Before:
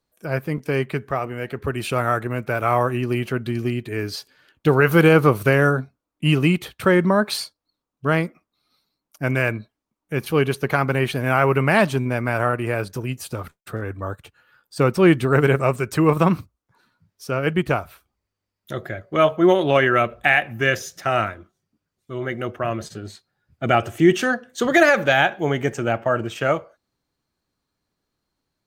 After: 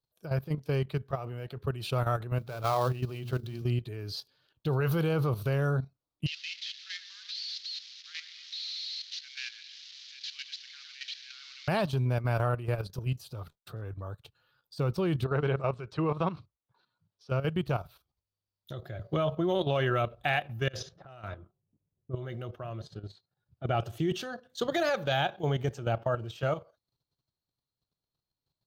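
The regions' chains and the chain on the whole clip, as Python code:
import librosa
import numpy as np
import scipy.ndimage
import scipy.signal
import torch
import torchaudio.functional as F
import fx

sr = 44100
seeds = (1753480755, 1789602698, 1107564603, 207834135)

y = fx.chain(x, sr, fx.dead_time(dead_ms=0.071),
    fx.hum_notches(base_hz=60, count=8),
    fx.mod_noise(seeds[0], snr_db=31), at=(2.39, 3.62))
y = fx.chain(y, sr, fx.delta_mod(bps=32000, step_db=-25.0),
    fx.ellip_highpass(hz=1900.0, order=4, stop_db=70),
    fx.echo_alternate(ms=108, hz=1800.0, feedback_pct=56, wet_db=-8), at=(6.26, 11.68))
y = fx.chain(y, sr, fx.lowpass(hz=3600.0, slope=12),
    fx.low_shelf(hz=210.0, db=-9.5), at=(15.24, 17.3))
y = fx.chain(y, sr, fx.low_shelf(hz=170.0, db=8.5),
    fx.notch(hz=7700.0, q=5.8),
    fx.band_squash(depth_pct=40), at=(18.99, 19.63))
y = fx.chain(y, sr, fx.env_lowpass(base_hz=470.0, full_db=-16.0),
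    fx.over_compress(threshold_db=-28.0, ratio=-0.5), at=(20.68, 22.16))
y = fx.chain(y, sr, fx.lowpass(hz=2300.0, slope=6),
    fx.low_shelf(hz=77.0, db=-6.0), at=(22.81, 23.75))
y = fx.graphic_eq_10(y, sr, hz=(125, 250, 2000, 4000, 8000), db=(7, -7, -11, 9, -8))
y = fx.level_steps(y, sr, step_db=11)
y = F.gain(torch.from_numpy(y), -5.0).numpy()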